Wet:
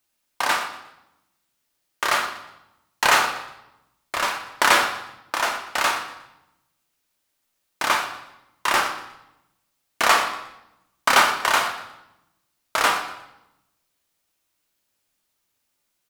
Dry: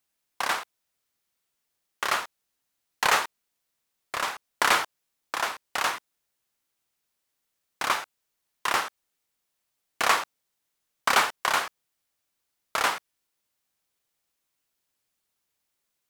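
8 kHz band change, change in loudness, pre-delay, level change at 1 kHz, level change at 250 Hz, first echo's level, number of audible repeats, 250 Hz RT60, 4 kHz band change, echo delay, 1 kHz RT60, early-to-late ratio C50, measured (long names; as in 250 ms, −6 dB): +5.0 dB, +5.0 dB, 3 ms, +5.5 dB, +7.0 dB, −15.5 dB, 1, 1.2 s, +5.5 dB, 120 ms, 0.85 s, 8.0 dB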